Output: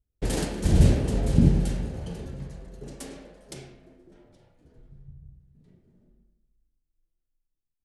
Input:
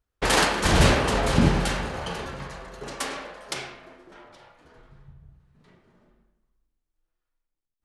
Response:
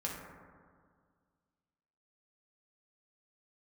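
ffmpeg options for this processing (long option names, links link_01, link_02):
-af "firequalizer=gain_entry='entry(110,0);entry(1100,-25);entry(1700,-20);entry(8200,-10)':delay=0.05:min_phase=1,volume=3dB"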